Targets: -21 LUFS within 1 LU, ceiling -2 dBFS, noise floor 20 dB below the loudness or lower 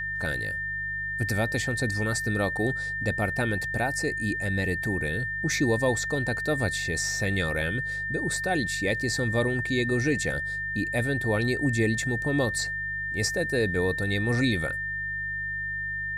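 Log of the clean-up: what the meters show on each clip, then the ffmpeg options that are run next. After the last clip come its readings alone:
hum 50 Hz; harmonics up to 150 Hz; hum level -41 dBFS; steady tone 1800 Hz; tone level -29 dBFS; loudness -27.0 LUFS; peak -13.5 dBFS; loudness target -21.0 LUFS
-> -af "bandreject=f=50:t=h:w=4,bandreject=f=100:t=h:w=4,bandreject=f=150:t=h:w=4"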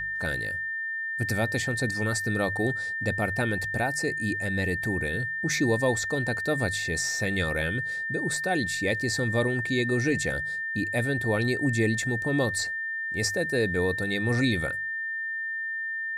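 hum none; steady tone 1800 Hz; tone level -29 dBFS
-> -af "bandreject=f=1.8k:w=30"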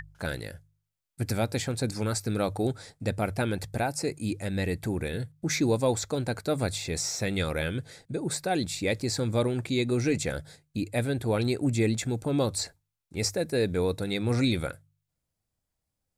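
steady tone none; loudness -29.5 LUFS; peak -15.0 dBFS; loudness target -21.0 LUFS
-> -af "volume=8.5dB"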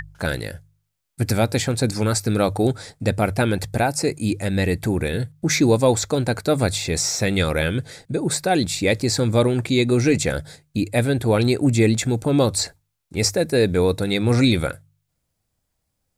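loudness -21.0 LUFS; peak -6.5 dBFS; noise floor -75 dBFS

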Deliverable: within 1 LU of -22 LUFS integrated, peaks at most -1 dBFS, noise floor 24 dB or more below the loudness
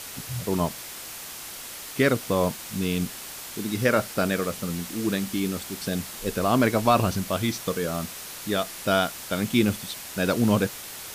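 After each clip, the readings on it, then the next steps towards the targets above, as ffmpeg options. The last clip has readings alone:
noise floor -39 dBFS; noise floor target -51 dBFS; loudness -26.5 LUFS; peak -7.5 dBFS; loudness target -22.0 LUFS
-> -af "afftdn=nr=12:nf=-39"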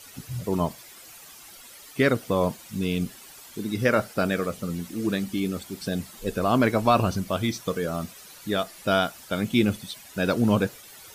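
noise floor -47 dBFS; noise floor target -50 dBFS
-> -af "afftdn=nr=6:nf=-47"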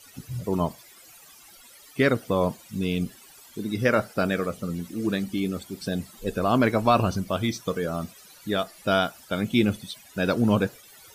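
noise floor -51 dBFS; loudness -26.0 LUFS; peak -8.0 dBFS; loudness target -22.0 LUFS
-> -af "volume=4dB"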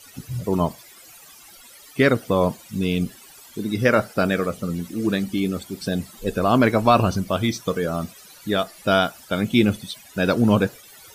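loudness -22.0 LUFS; peak -4.0 dBFS; noise floor -47 dBFS

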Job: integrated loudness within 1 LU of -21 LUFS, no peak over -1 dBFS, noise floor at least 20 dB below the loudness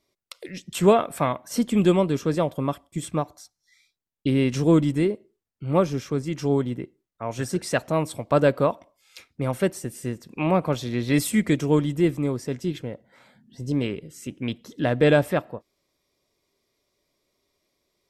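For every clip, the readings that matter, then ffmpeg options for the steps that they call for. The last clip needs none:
loudness -24.0 LUFS; peak -6.0 dBFS; loudness target -21.0 LUFS
-> -af "volume=3dB"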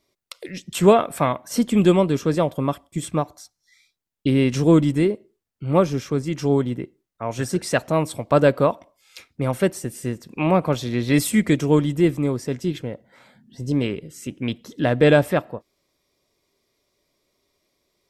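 loudness -21.0 LUFS; peak -3.0 dBFS; noise floor -78 dBFS

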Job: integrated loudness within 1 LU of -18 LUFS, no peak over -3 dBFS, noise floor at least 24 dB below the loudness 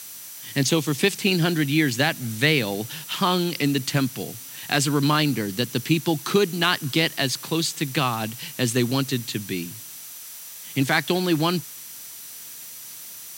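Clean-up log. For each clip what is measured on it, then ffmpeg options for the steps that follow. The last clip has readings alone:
steady tone 5900 Hz; tone level -48 dBFS; noise floor -40 dBFS; noise floor target -47 dBFS; loudness -23.0 LUFS; peak -4.0 dBFS; loudness target -18.0 LUFS
-> -af "bandreject=f=5.9k:w=30"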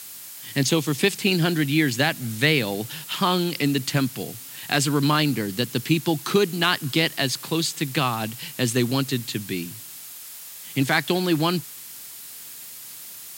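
steady tone none; noise floor -40 dBFS; noise floor target -47 dBFS
-> -af "afftdn=nr=7:nf=-40"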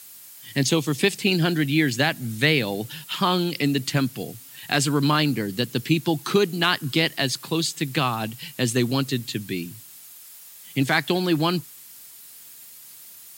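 noise floor -45 dBFS; noise floor target -47 dBFS
-> -af "afftdn=nr=6:nf=-45"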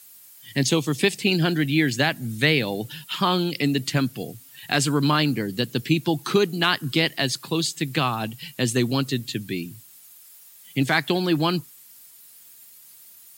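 noise floor -49 dBFS; loudness -23.0 LUFS; peak -4.5 dBFS; loudness target -18.0 LUFS
-> -af "volume=5dB,alimiter=limit=-3dB:level=0:latency=1"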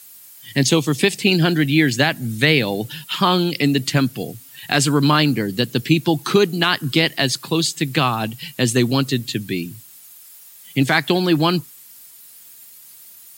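loudness -18.5 LUFS; peak -3.0 dBFS; noise floor -44 dBFS

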